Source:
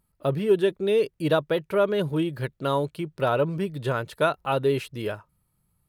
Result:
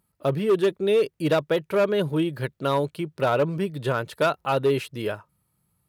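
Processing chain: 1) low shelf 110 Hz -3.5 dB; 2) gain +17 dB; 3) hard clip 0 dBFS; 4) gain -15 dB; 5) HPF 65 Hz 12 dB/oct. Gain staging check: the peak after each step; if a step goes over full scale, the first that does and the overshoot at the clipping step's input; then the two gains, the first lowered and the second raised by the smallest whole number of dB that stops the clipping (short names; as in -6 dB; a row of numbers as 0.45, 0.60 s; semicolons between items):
-10.0, +7.0, 0.0, -15.0, -12.5 dBFS; step 2, 7.0 dB; step 2 +10 dB, step 4 -8 dB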